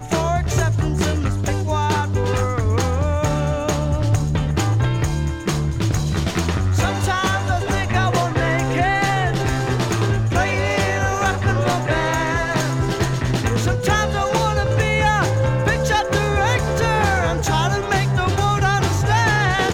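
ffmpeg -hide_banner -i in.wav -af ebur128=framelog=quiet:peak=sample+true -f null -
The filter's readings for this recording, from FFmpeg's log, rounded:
Integrated loudness:
  I:         -19.4 LUFS
  Threshold: -29.4 LUFS
Loudness range:
  LRA:         2.1 LU
  Threshold: -39.4 LUFS
  LRA low:   -20.5 LUFS
  LRA high:  -18.3 LUFS
Sample peak:
  Peak:       -4.7 dBFS
True peak:
  Peak:       -4.7 dBFS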